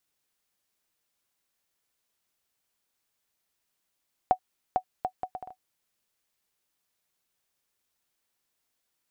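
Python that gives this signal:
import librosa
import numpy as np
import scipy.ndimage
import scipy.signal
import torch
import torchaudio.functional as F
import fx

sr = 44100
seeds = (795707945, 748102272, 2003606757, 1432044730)

y = fx.bouncing_ball(sr, first_gap_s=0.45, ratio=0.64, hz=743.0, decay_ms=79.0, level_db=-10.5)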